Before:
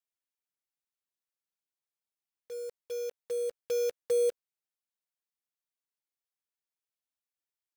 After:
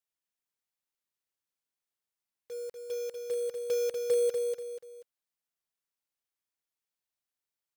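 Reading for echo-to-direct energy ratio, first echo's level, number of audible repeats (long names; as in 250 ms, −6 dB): −4.5 dB, −5.0 dB, 3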